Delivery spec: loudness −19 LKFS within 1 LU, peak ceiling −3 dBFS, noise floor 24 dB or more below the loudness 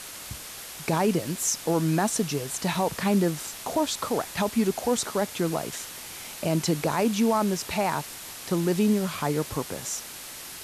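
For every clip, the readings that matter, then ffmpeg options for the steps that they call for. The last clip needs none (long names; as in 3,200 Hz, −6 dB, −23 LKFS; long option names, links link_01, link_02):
background noise floor −41 dBFS; target noise floor −51 dBFS; integrated loudness −27.0 LKFS; sample peak −13.5 dBFS; target loudness −19.0 LKFS
→ -af "afftdn=noise_reduction=10:noise_floor=-41"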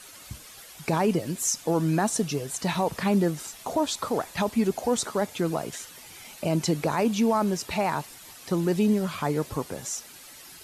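background noise floor −47 dBFS; target noise floor −51 dBFS
→ -af "afftdn=noise_reduction=6:noise_floor=-47"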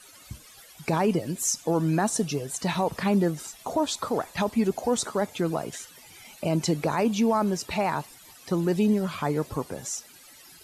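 background noise floor −51 dBFS; integrated loudness −27.0 LKFS; sample peak −14.0 dBFS; target loudness −19.0 LKFS
→ -af "volume=8dB"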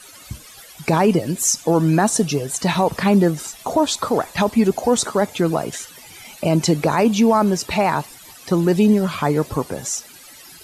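integrated loudness −19.0 LKFS; sample peak −6.0 dBFS; background noise floor −43 dBFS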